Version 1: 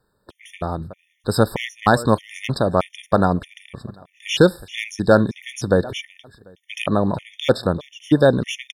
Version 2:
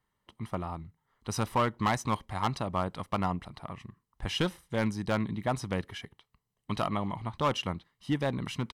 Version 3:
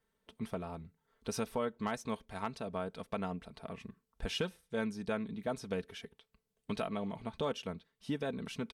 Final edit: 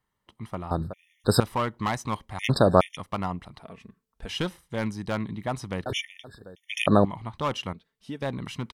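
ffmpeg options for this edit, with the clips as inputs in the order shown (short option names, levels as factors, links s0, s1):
-filter_complex "[0:a]asplit=3[s0][s1][s2];[2:a]asplit=2[s3][s4];[1:a]asplit=6[s5][s6][s7][s8][s9][s10];[s5]atrim=end=0.712[s11];[s0]atrim=start=0.708:end=1.402[s12];[s6]atrim=start=1.398:end=2.392[s13];[s1]atrim=start=2.388:end=2.972[s14];[s7]atrim=start=2.968:end=3.632[s15];[s3]atrim=start=3.628:end=4.292[s16];[s8]atrim=start=4.288:end=5.862[s17];[s2]atrim=start=5.858:end=7.052[s18];[s9]atrim=start=7.048:end=7.732[s19];[s4]atrim=start=7.728:end=8.222[s20];[s10]atrim=start=8.218[s21];[s11][s12]acrossfade=d=0.004:c1=hsin:c2=hsin[s22];[s22][s13]acrossfade=d=0.004:c1=hsin:c2=hsin[s23];[s23][s14]acrossfade=d=0.004:c1=hsin:c2=hsin[s24];[s24][s15]acrossfade=d=0.004:c1=hsin:c2=hsin[s25];[s25][s16]acrossfade=d=0.004:c1=hsin:c2=hsin[s26];[s26][s17]acrossfade=d=0.004:c1=hsin:c2=hsin[s27];[s27][s18]acrossfade=d=0.004:c1=hsin:c2=hsin[s28];[s28][s19]acrossfade=d=0.004:c1=hsin:c2=hsin[s29];[s29][s20]acrossfade=d=0.004:c1=hsin:c2=hsin[s30];[s30][s21]acrossfade=d=0.004:c1=hsin:c2=hsin"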